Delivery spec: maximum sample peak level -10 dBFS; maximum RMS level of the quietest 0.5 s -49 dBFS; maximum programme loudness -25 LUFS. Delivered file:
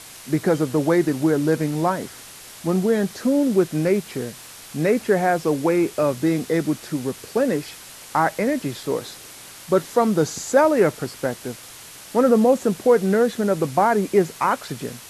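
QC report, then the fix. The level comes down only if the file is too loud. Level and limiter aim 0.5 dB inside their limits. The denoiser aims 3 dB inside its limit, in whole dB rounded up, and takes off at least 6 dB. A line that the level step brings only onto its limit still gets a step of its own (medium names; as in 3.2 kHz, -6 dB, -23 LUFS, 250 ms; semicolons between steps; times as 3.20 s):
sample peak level -4.5 dBFS: fail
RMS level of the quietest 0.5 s -41 dBFS: fail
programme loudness -21.0 LUFS: fail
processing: noise reduction 7 dB, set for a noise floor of -41 dBFS; trim -4.5 dB; peak limiter -10.5 dBFS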